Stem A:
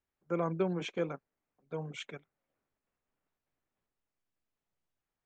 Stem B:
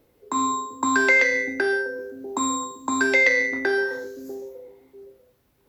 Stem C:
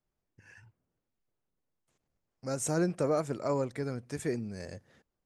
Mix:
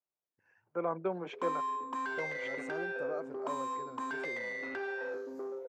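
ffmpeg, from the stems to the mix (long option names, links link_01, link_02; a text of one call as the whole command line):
ffmpeg -i stem1.wav -i stem2.wav -i stem3.wav -filter_complex "[0:a]adelay=450,volume=2dB[link_01];[1:a]acompressor=threshold=-27dB:ratio=10,asoftclip=type=tanh:threshold=-32dB,adelay=1100,volume=2dB[link_02];[2:a]volume=-8.5dB[link_03];[link_01][link_02][link_03]amix=inputs=3:normalize=0,bandpass=frequency=820:width_type=q:width=0.88:csg=0" out.wav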